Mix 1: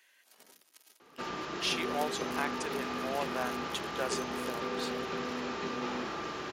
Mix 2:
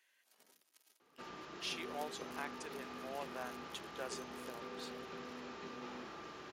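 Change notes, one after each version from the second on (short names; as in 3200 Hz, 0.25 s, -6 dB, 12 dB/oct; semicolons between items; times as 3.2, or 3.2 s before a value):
speech -9.5 dB; background -12.0 dB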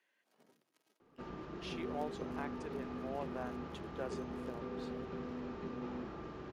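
master: add tilt -4 dB/oct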